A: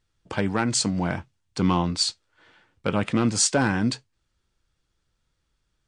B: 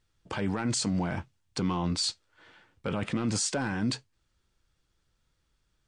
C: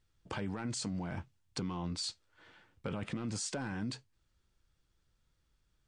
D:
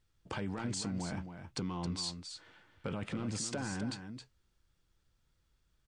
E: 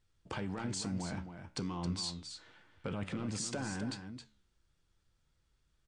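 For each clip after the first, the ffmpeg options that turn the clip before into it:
-af "alimiter=limit=0.0944:level=0:latency=1:release=20"
-af "lowshelf=f=200:g=3.5,acompressor=threshold=0.0282:ratio=4,volume=0.631"
-af "aecho=1:1:269:0.376"
-af "flanger=delay=9.6:depth=7:regen=84:speed=1:shape=triangular,aresample=22050,aresample=44100,volume=1.58"

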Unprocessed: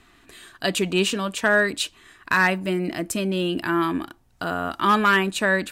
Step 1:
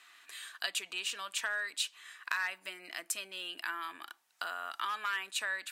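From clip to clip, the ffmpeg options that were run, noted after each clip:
-af "acompressor=threshold=0.0316:ratio=5,highpass=1300"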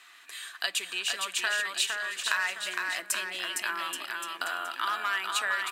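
-af "aecho=1:1:460|828|1122|1358|1546:0.631|0.398|0.251|0.158|0.1,volume=1.78"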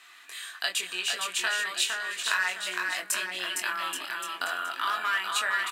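-filter_complex "[0:a]asplit=2[s0][s1];[s1]adelay=22,volume=0.631[s2];[s0][s2]amix=inputs=2:normalize=0"

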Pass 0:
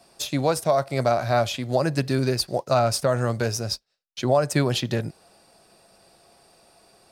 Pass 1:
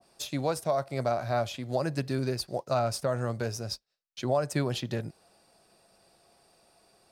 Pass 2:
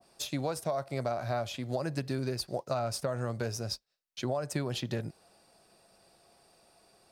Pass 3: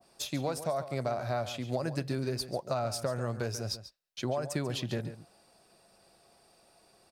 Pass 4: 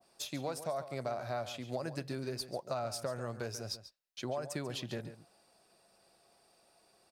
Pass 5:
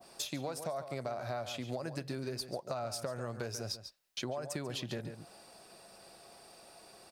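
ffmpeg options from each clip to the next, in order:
-af "adynamicequalizer=threshold=0.0178:dfrequency=1500:dqfactor=0.7:tfrequency=1500:tqfactor=0.7:attack=5:release=100:ratio=0.375:range=1.5:mode=cutabove:tftype=highshelf,volume=0.447"
-af "acompressor=threshold=0.0398:ratio=6"
-filter_complex "[0:a]asplit=2[s0][s1];[s1]adelay=139.9,volume=0.251,highshelf=f=4000:g=-3.15[s2];[s0][s2]amix=inputs=2:normalize=0"
-af "lowshelf=f=190:g=-6,volume=0.631"
-af "acompressor=threshold=0.00282:ratio=3,volume=3.76"

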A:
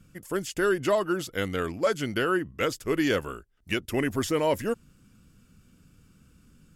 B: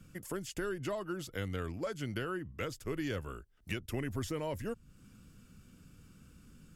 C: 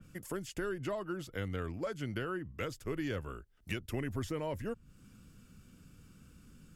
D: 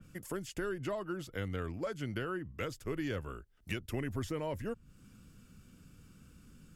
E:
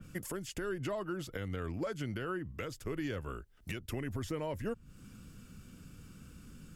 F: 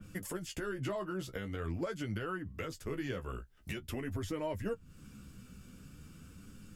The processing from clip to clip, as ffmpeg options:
-filter_complex "[0:a]acrossover=split=130[s0][s1];[s1]acompressor=threshold=0.00794:ratio=2.5[s2];[s0][s2]amix=inputs=2:normalize=0"
-af "adynamicequalizer=threshold=0.00126:dfrequency=3300:dqfactor=0.7:tfrequency=3300:tqfactor=0.7:attack=5:release=100:ratio=0.375:range=3:mode=cutabove:tftype=highshelf"
-af anull
-af "alimiter=level_in=2.66:limit=0.0631:level=0:latency=1:release=274,volume=0.376,volume=1.78"
-af "flanger=delay=9.7:depth=6.3:regen=26:speed=0.45:shape=sinusoidal,volume=1.5"

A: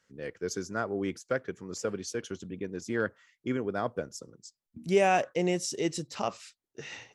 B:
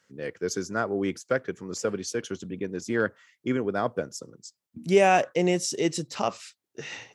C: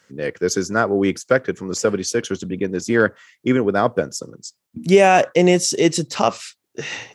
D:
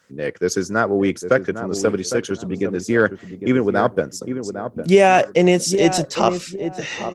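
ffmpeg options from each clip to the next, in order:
-af "highpass=92,volume=1.68"
-af "alimiter=level_in=3.35:limit=0.891:release=50:level=0:latency=1,volume=0.891"
-filter_complex "[0:a]asplit=2[s0][s1];[s1]adelay=806,lowpass=f=930:p=1,volume=0.376,asplit=2[s2][s3];[s3]adelay=806,lowpass=f=930:p=1,volume=0.28,asplit=2[s4][s5];[s5]adelay=806,lowpass=f=930:p=1,volume=0.28[s6];[s0][s2][s4][s6]amix=inputs=4:normalize=0" -ar 48000 -c:a libopus -b:a 24k

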